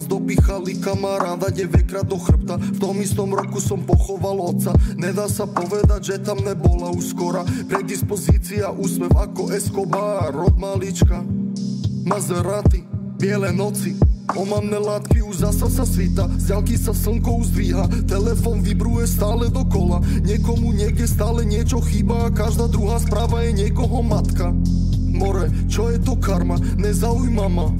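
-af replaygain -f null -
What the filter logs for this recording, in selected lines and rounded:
track_gain = +4.4 dB
track_peak = 0.341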